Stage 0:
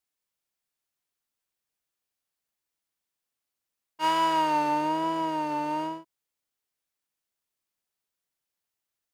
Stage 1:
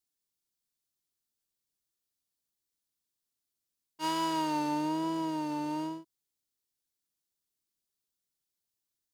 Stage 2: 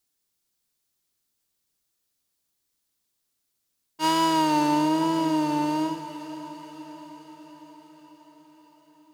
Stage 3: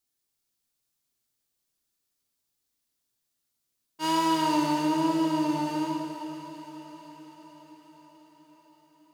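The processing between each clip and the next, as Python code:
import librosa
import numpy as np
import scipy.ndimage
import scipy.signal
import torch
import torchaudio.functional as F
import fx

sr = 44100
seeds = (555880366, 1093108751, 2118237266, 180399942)

y1 = fx.band_shelf(x, sr, hz=1200.0, db=-8.5, octaves=2.8)
y2 = fx.echo_diffused(y1, sr, ms=505, feedback_pct=63, wet_db=-13.0)
y2 = y2 * 10.0 ** (9.0 / 20.0)
y3 = fx.rev_plate(y2, sr, seeds[0], rt60_s=2.2, hf_ratio=0.9, predelay_ms=0, drr_db=1.5)
y3 = y3 * 10.0 ** (-5.0 / 20.0)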